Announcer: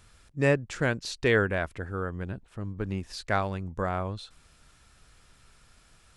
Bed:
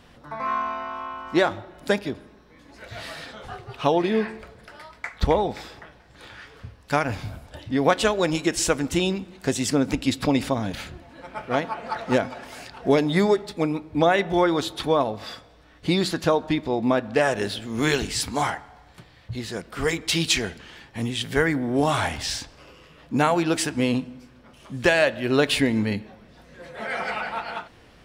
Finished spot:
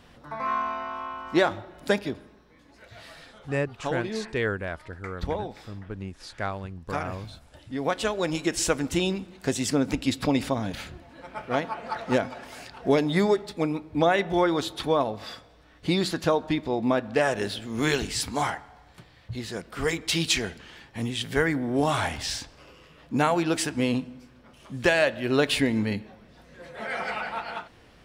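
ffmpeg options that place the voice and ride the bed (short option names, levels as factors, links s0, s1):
-filter_complex "[0:a]adelay=3100,volume=0.631[s0];[1:a]volume=2,afade=t=out:st=2.06:d=0.89:silence=0.375837,afade=t=in:st=7.64:d=0.98:silence=0.421697[s1];[s0][s1]amix=inputs=2:normalize=0"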